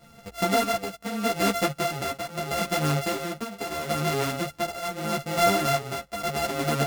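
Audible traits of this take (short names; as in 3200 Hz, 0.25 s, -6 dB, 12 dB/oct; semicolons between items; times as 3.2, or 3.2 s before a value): a buzz of ramps at a fixed pitch in blocks of 64 samples; tremolo triangle 0.78 Hz, depth 75%; a shimmering, thickened sound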